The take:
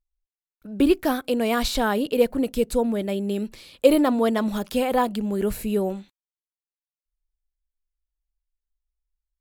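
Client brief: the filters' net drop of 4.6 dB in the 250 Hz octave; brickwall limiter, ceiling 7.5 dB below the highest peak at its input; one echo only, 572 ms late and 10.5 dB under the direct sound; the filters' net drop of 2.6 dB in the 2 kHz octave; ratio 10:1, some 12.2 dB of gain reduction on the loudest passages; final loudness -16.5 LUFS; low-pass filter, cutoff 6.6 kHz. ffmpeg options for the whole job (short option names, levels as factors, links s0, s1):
-af "lowpass=6600,equalizer=f=250:t=o:g=-5.5,equalizer=f=2000:t=o:g=-3.5,acompressor=threshold=0.0631:ratio=10,alimiter=limit=0.0794:level=0:latency=1,aecho=1:1:572:0.299,volume=5.96"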